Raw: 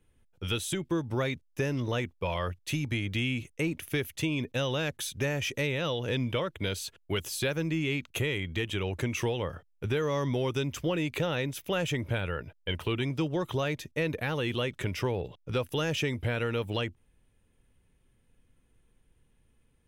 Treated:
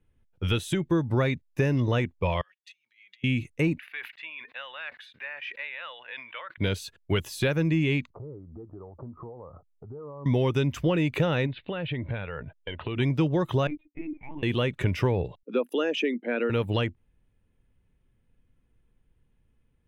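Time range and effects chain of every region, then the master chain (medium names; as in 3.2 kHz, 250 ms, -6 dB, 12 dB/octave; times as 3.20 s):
2.41–3.24 s: comb 5.4 ms, depth 62% + compressor with a negative ratio -37 dBFS, ratio -0.5 + ladder band-pass 3.3 kHz, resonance 20%
3.79–6.58 s: Chebyshev high-pass 1.6 kHz + distance through air 410 m + decay stretcher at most 86 dB/s
8.11–10.26 s: Chebyshev low-pass 1.3 kHz, order 6 + compression 8:1, threshold -42 dBFS
11.46–12.97 s: steep low-pass 4.2 kHz 72 dB/octave + compression, threshold -33 dBFS
13.67–14.43 s: vowel filter u + LPC vocoder at 8 kHz pitch kept
15.43–16.50 s: resonances exaggerated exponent 1.5 + steep high-pass 200 Hz 72 dB/octave
whole clip: spectral noise reduction 8 dB; tone controls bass +4 dB, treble -9 dB; trim +4 dB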